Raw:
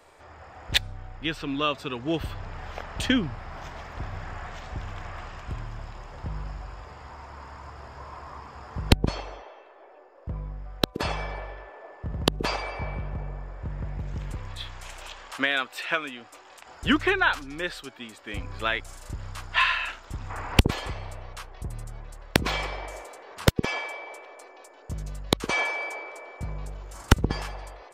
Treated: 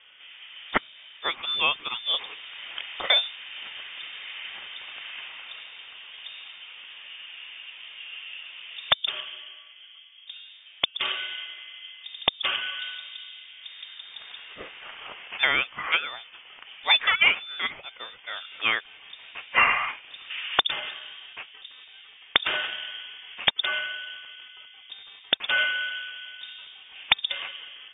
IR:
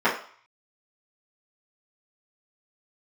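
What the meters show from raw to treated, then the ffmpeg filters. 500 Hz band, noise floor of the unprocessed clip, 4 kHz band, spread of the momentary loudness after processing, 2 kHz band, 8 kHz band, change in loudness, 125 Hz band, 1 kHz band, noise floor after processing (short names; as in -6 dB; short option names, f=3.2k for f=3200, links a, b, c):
-7.0 dB, -51 dBFS, +7.0 dB, 21 LU, +3.0 dB, under -40 dB, +3.0 dB, -24.0 dB, -0.5 dB, -51 dBFS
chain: -af "highpass=f=210:w=0.5412,highpass=f=210:w=1.3066,equalizer=f=390:w=5.6:g=-12.5,lowpass=f=3.2k:t=q:w=0.5098,lowpass=f=3.2k:t=q:w=0.6013,lowpass=f=3.2k:t=q:w=0.9,lowpass=f=3.2k:t=q:w=2.563,afreqshift=-3800,volume=3dB"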